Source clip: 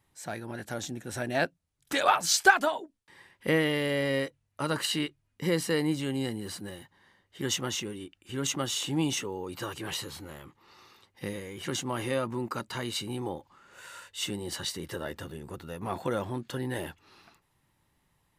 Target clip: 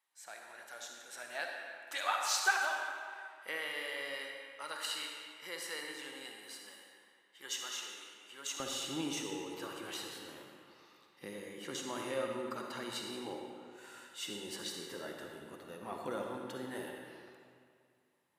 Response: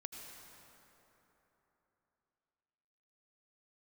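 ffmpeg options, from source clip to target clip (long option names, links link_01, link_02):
-filter_complex "[0:a]asetnsamples=nb_out_samples=441:pad=0,asendcmd='8.6 highpass f 230',highpass=880[link_01];[1:a]atrim=start_sample=2205,asetrate=74970,aresample=44100[link_02];[link_01][link_02]afir=irnorm=-1:irlink=0,volume=1dB"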